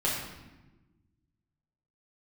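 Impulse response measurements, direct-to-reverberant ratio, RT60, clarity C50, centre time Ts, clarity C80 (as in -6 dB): -5.5 dB, 1.1 s, 2.0 dB, 58 ms, 4.0 dB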